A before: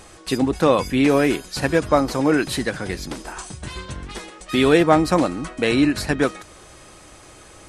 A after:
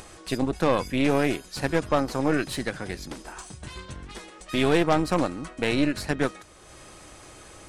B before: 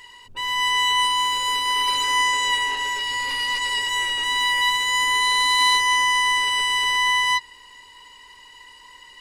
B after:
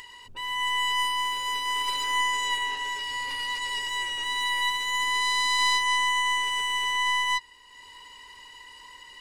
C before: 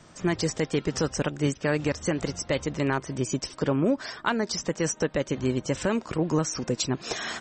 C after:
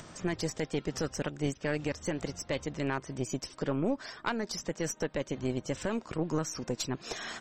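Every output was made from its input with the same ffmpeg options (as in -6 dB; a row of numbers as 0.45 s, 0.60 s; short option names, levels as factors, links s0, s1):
-af "aeval=exprs='0.891*(cos(1*acos(clip(val(0)/0.891,-1,1)))-cos(1*PI/2))+0.0708*(cos(4*acos(clip(val(0)/0.891,-1,1)))-cos(4*PI/2))+0.141*(cos(6*acos(clip(val(0)/0.891,-1,1)))-cos(6*PI/2))':c=same,acompressor=mode=upward:threshold=0.0251:ratio=2.5,volume=0.447"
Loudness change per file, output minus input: -6.0 LU, -6.0 LU, -6.5 LU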